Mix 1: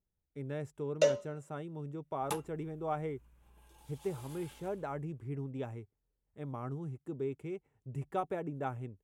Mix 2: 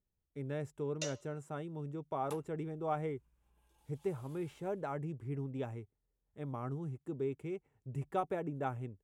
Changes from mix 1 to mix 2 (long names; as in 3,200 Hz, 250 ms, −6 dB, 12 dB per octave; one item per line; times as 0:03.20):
first sound: add resonant band-pass 6,300 Hz, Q 0.79
second sound −11.0 dB